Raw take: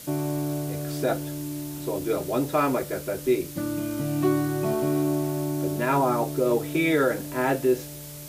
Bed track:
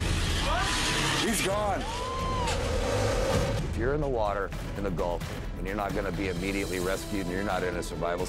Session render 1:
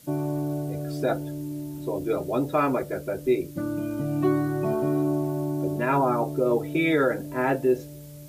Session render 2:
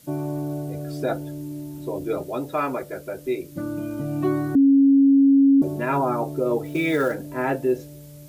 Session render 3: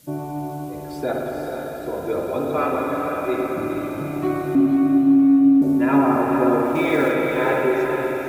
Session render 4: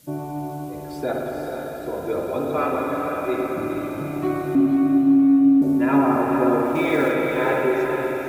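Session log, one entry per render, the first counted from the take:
noise reduction 11 dB, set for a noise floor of -39 dBFS
2.23–3.52 s: bass shelf 410 Hz -6 dB; 4.55–5.62 s: bleep 275 Hz -11.5 dBFS; 6.65–7.15 s: companded quantiser 6-bit
echo that smears into a reverb 479 ms, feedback 47%, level -5 dB; spring tank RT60 3.7 s, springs 53/57 ms, chirp 65 ms, DRR -2 dB
trim -1 dB

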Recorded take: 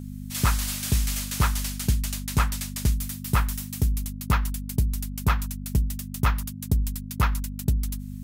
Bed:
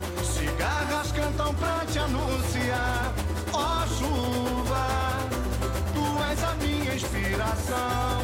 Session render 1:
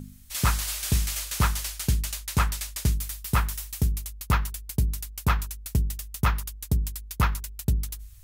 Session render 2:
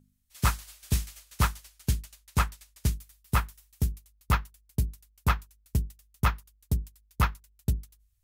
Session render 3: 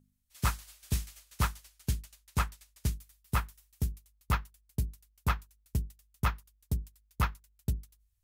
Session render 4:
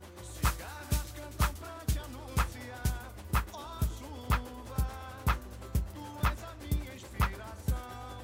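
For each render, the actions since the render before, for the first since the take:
de-hum 50 Hz, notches 8
upward expansion 2.5:1, over -34 dBFS
trim -4.5 dB
add bed -17.5 dB

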